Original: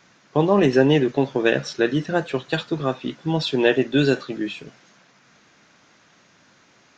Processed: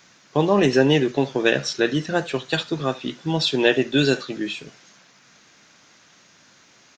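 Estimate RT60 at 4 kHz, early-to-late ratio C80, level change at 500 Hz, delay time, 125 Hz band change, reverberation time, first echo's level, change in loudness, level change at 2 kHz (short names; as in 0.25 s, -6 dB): none, none, -1.0 dB, 73 ms, -1.0 dB, none, -22.0 dB, 0.0 dB, +1.5 dB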